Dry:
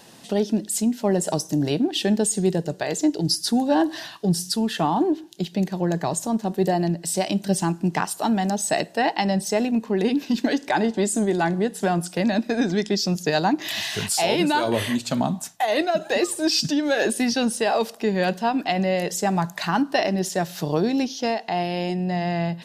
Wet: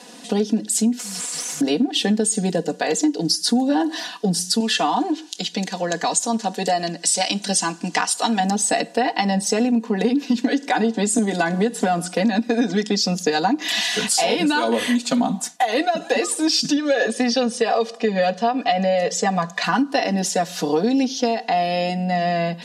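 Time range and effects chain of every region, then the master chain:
0:00.99–0:01.61: inverse Chebyshev band-stop filter 290–1,900 Hz, stop band 70 dB + downward compressor 4 to 1, threshold −46 dBFS + mid-hump overdrive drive 44 dB, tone 3,600 Hz, clips at −20.5 dBFS
0:04.60–0:08.40: low-pass filter 7,400 Hz + spectral tilt +3 dB per octave + one half of a high-frequency compander encoder only
0:11.18–0:12.14: floating-point word with a short mantissa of 8 bits + multiband upward and downward compressor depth 100%
0:16.76–0:19.64: low-pass filter 6,100 Hz + comb filter 1.7 ms, depth 48%
whole clip: Chebyshev band-pass filter 250–8,700 Hz, order 2; comb filter 4.1 ms, depth 90%; downward compressor, threshold −20 dBFS; level +4.5 dB

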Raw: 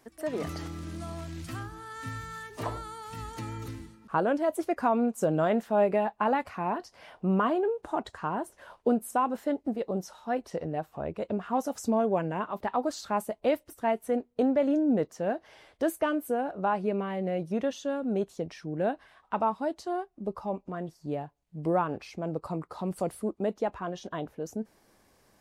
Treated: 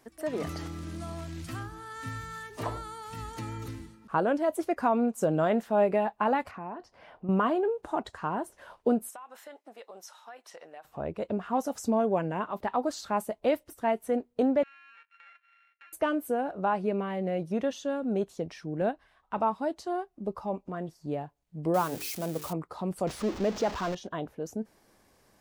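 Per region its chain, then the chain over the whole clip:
0:06.51–0:07.29: low-pass filter 1,700 Hz 6 dB per octave + downward compressor 2 to 1, threshold −41 dBFS
0:09.09–0:10.85: high-pass filter 1,000 Hz + downward compressor 12 to 1, threshold −41 dBFS + notch filter 4,600 Hz, Q 20
0:14.63–0:15.93: samples sorted by size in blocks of 32 samples + flat-topped band-pass 2,000 Hz, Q 2 + downward compressor, threshold −52 dBFS
0:18.81–0:19.38: low-shelf EQ 71 Hz +12 dB + transient designer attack −3 dB, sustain −7 dB
0:21.74–0:22.53: spike at every zero crossing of −29 dBFS + mains-hum notches 50/100/150/200/250/300/350/400/450 Hz
0:23.07–0:23.95: converter with a step at zero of −33.5 dBFS + high shelf with overshoot 7,800 Hz −10.5 dB, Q 1.5
whole clip: no processing

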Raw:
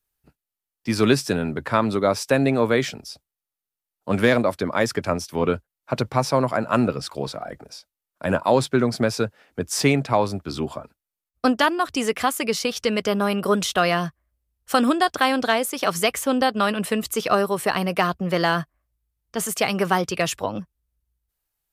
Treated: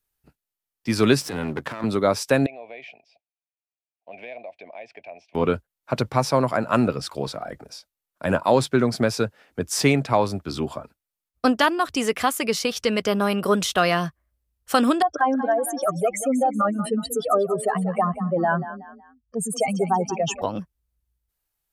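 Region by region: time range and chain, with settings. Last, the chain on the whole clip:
0:01.21–0:01.84: gain on one half-wave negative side −12 dB + high-pass filter 120 Hz + compressor whose output falls as the input rises −29 dBFS
0:02.46–0:05.35: pair of resonant band-passes 1,300 Hz, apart 1.8 octaves + high-frequency loss of the air 100 metres + downward compressor 2.5 to 1, threshold −37 dBFS
0:15.02–0:20.42: expanding power law on the bin magnitudes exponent 3.3 + echo with shifted repeats 186 ms, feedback 35%, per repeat +30 Hz, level −13 dB
whole clip: no processing

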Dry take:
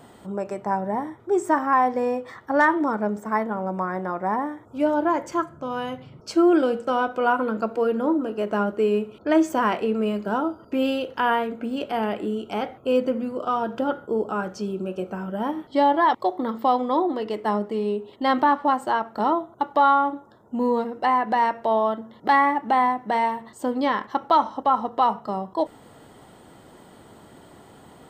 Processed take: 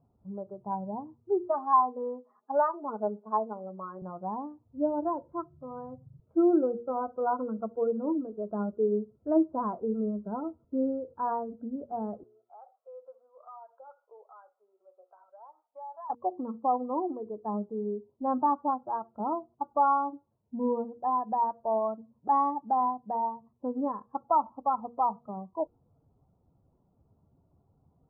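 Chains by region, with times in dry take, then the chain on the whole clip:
0:01.48–0:04.02: high-pass filter 330 Hz + comb filter 4.8 ms, depth 72%
0:12.23–0:16.10: high-pass filter 660 Hz 24 dB per octave + downward compressor 2.5 to 1, threshold −32 dBFS
whole clip: spectral dynamics exaggerated over time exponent 1.5; Butterworth low-pass 1,200 Hz 48 dB per octave; hum removal 119.1 Hz, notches 4; level −4 dB

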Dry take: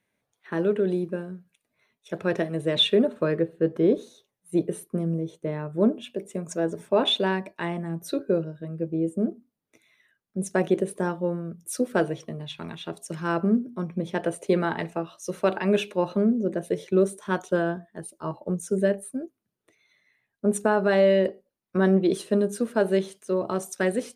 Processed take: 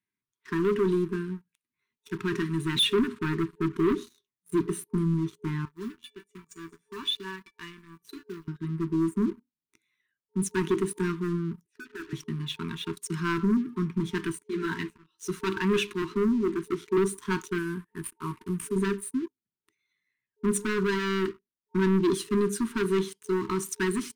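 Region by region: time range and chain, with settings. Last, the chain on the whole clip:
0:05.65–0:08.48: one scale factor per block 7 bits + parametric band 3,000 Hz +5 dB 2.8 octaves + tuned comb filter 580 Hz, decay 0.23 s, mix 90%
0:11.66–0:12.13: formant filter e + mid-hump overdrive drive 15 dB, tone 1,300 Hz, clips at −20 dBFS + mains-hum notches 50/100/150/200/250 Hz
0:14.32–0:15.28: volume swells 275 ms + Butterworth band-reject 1,200 Hz, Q 6.2 + string-ensemble chorus
0:16.02–0:16.98: high-pass filter 320 Hz + tilt shelving filter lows +6 dB, about 700 Hz
0:17.58–0:18.76: variable-slope delta modulation 64 kbit/s + flat-topped bell 5,100 Hz −13.5 dB 1.2 octaves + downward compressor 2 to 1, threshold −31 dBFS
whole clip: leveller curve on the samples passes 3; brick-wall band-stop 420–910 Hz; level −8 dB

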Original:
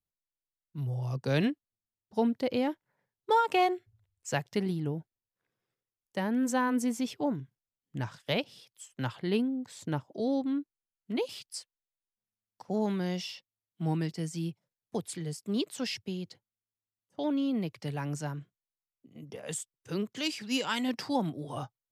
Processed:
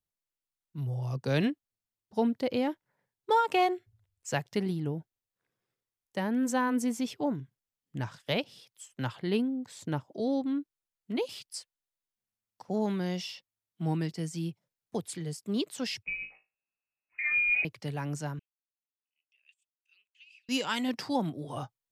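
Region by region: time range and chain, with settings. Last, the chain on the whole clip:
0:16.03–0:17.65: flutter between parallel walls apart 3.2 metres, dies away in 0.25 s + voice inversion scrambler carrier 2,700 Hz
0:18.39–0:20.49: first difference + compressor whose output falls as the input rises −42 dBFS, ratio −0.5 + resonant band-pass 2,600 Hz, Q 19
whole clip: no processing

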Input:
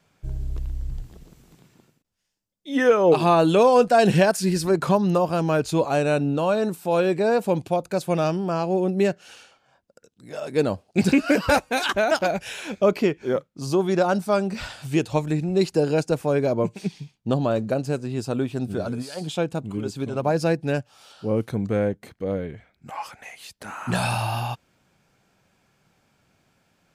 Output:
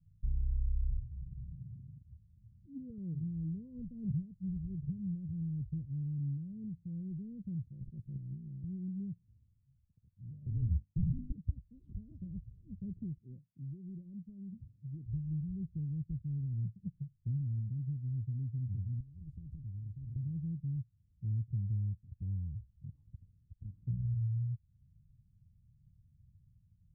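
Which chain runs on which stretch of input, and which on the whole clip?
0:00.98–0:02.98: high-pass filter 58 Hz + upward compression, threshold −34 dBFS
0:07.65–0:08.64: bass and treble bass −13 dB, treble +8 dB + ring modulation 30 Hz + level that may fall only so fast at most 88 dB per second
0:10.46–0:11.32: frequency shifter −24 Hz + mains-hum notches 50/100/150/200/250/300/350/400/450/500 Hz + leveller curve on the samples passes 3
0:13.18–0:15.06: high-pass filter 250 Hz + downward compressor 2 to 1, threshold −27 dBFS
0:19.00–0:20.16: high-pass filter 77 Hz + every bin compressed towards the loudest bin 10 to 1
whole clip: inverse Chebyshev low-pass filter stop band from 670 Hz, stop band 80 dB; downward compressor 2 to 1, threshold −53 dBFS; level +11 dB

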